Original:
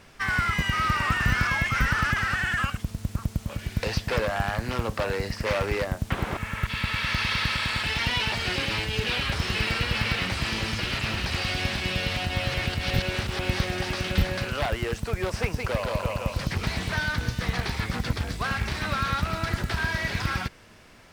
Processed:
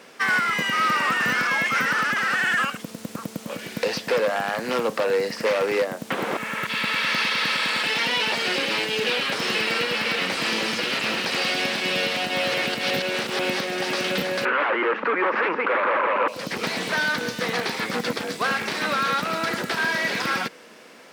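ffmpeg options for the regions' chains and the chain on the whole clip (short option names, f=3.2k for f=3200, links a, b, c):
-filter_complex "[0:a]asettb=1/sr,asplit=3[a][b][c];[a]atrim=end=14.454[d];[b]atrim=start=14.45:end=16.28,asetpts=PTS-STARTPTS,afade=t=in:d=0.004:c=qsin,afade=t=out:st=1.826:d=0.004:c=qsin,aeval=exprs='0.251*sin(PI/2*6.31*val(0)/0.251)':c=same,highpass=400,equalizer=f=480:t=q:w=4:g=-8,equalizer=f=690:t=q:w=4:g=-10,equalizer=f=1.2k:t=q:w=4:g=4,lowpass=f=2.1k:w=0.5412,lowpass=f=2.1k:w=1.3066[e];[c]atrim=start=16.276[f];[d][e]acrossfade=d=0.004:c1=hsin:c2=qsin[g];[g][f]acrossfade=d=0.004:c1=qsin:c2=hsin,highpass=f=210:w=0.5412,highpass=f=210:w=1.3066,equalizer=f=490:t=o:w=0.27:g=7.5,alimiter=limit=-19dB:level=0:latency=1:release=365,volume=5.5dB"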